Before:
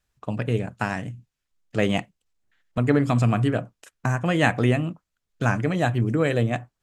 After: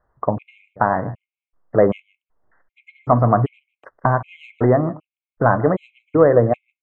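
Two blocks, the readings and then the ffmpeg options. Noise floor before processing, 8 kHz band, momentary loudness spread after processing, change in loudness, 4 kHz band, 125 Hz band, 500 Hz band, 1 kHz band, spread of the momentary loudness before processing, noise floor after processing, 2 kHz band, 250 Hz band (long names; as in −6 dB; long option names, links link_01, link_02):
−81 dBFS, below −30 dB, 12 LU, +5.0 dB, below −15 dB, +1.0 dB, +9.0 dB, +9.0 dB, 12 LU, below −85 dBFS, −2.0 dB, +1.0 dB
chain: -filter_complex "[0:a]asplit=2[link_01][link_02];[link_02]acompressor=threshold=-33dB:ratio=6,volume=-0.5dB[link_03];[link_01][link_03]amix=inputs=2:normalize=0,lowpass=5100,equalizer=frequency=1100:width_type=o:width=0.81:gain=7.5,acontrast=63,firequalizer=gain_entry='entry(230,0);entry(340,5);entry(580,10);entry(980,4);entry(4000,-27)':delay=0.05:min_phase=1,asplit=2[link_04][link_05];[link_05]aecho=0:1:153:0.112[link_06];[link_04][link_06]amix=inputs=2:normalize=0,afftfilt=real='re*gt(sin(2*PI*1.3*pts/sr)*(1-2*mod(floor(b*sr/1024/2100),2)),0)':imag='im*gt(sin(2*PI*1.3*pts/sr)*(1-2*mod(floor(b*sr/1024/2100),2)),0)':win_size=1024:overlap=0.75,volume=-4.5dB"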